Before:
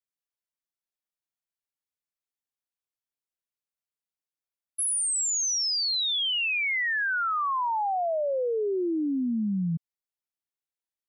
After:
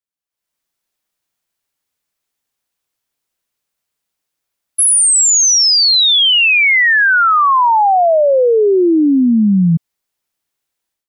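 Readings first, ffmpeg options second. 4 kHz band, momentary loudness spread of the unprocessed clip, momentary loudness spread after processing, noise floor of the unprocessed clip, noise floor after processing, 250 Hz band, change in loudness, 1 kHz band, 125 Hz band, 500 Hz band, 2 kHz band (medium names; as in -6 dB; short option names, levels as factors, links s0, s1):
+16.5 dB, 5 LU, 5 LU, under -85 dBFS, -81 dBFS, +16.5 dB, +16.5 dB, +16.5 dB, +16.5 dB, +16.5 dB, +16.5 dB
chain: -af "dynaudnorm=f=280:g=3:m=6.68"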